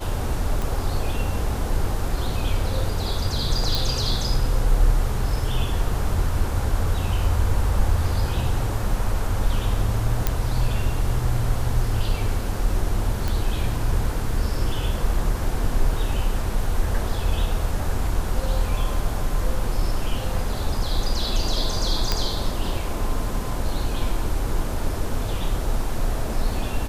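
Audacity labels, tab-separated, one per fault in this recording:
0.620000	0.620000	pop
3.750000	3.750000	pop
10.270000	10.270000	pop -6 dBFS
13.280000	13.280000	pop
22.120000	22.120000	pop -6 dBFS

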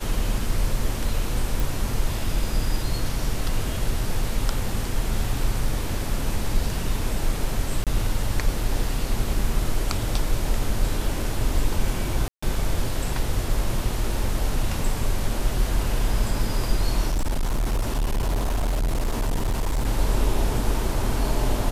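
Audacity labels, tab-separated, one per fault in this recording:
1.600000	1.600000	pop
7.840000	7.870000	gap 27 ms
12.280000	12.430000	gap 0.145 s
17.090000	19.860000	clipped -19.5 dBFS

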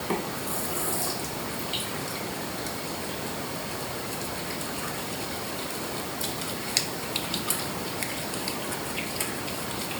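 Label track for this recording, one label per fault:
3.960000	5.220000	clipped -25.5 dBFS

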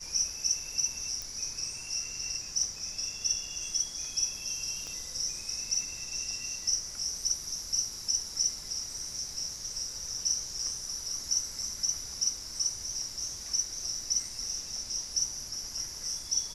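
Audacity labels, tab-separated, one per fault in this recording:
1.220000	1.220000	pop
4.870000	4.870000	pop -28 dBFS

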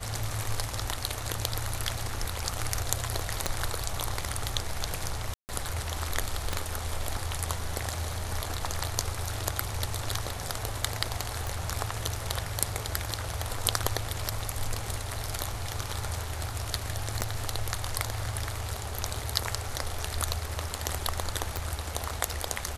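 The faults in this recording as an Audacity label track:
3.460000	3.460000	pop -11 dBFS
5.340000	5.490000	gap 0.149 s
6.530000	6.530000	pop -14 dBFS
11.470000	11.470000	pop
17.210000	17.220000	gap 6.5 ms
21.570000	21.570000	pop

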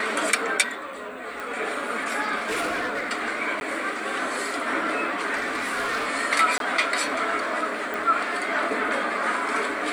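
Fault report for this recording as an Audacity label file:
1.400000	1.400000	pop
2.370000	3.090000	clipped -23 dBFS
3.600000	3.610000	gap 11 ms
5.340000	6.080000	clipped -23 dBFS
6.580000	6.600000	gap 22 ms
7.940000	7.940000	pop

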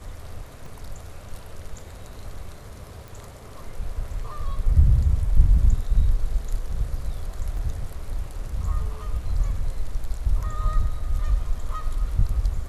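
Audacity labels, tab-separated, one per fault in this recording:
0.660000	0.660000	gap 3.4 ms
3.080000	3.080000	pop
7.570000	7.570000	gap 2.6 ms

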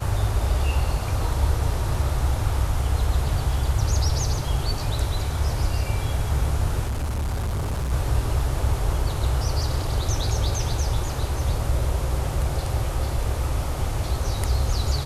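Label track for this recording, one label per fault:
6.860000	7.930000	clipped -22.5 dBFS

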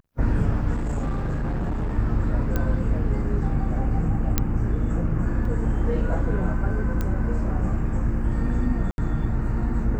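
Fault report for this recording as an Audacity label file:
0.740000	1.960000	clipped -22 dBFS
2.560000	2.560000	pop -12 dBFS
4.380000	4.380000	pop -5 dBFS
5.450000	5.450000	gap 3.3 ms
7.010000	7.010000	pop -14 dBFS
8.910000	8.980000	gap 71 ms

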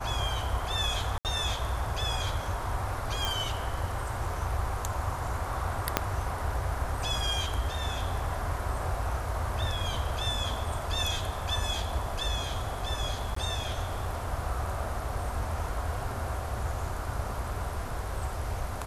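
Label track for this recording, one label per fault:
1.180000	1.250000	gap 68 ms
3.250000	3.250000	pop
5.970000	5.970000	pop -6 dBFS
13.350000	13.360000	gap 14 ms

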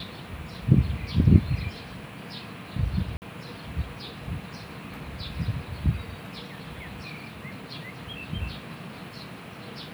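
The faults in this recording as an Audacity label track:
3.170000	3.220000	gap 49 ms

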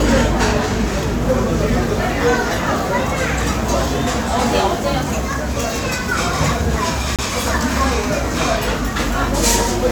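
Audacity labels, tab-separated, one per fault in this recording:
7.160000	7.190000	gap 27 ms

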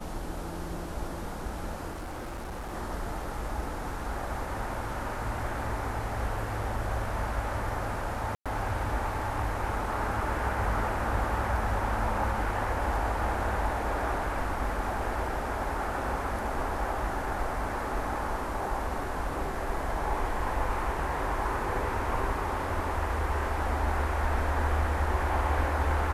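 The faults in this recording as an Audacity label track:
1.910000	2.740000	clipped -34 dBFS
8.350000	8.460000	gap 0.106 s

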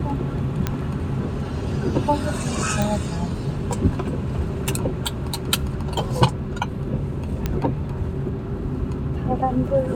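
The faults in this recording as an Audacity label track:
0.670000	0.670000	pop -8 dBFS
2.820000	2.820000	pop
7.460000	7.460000	pop -9 dBFS

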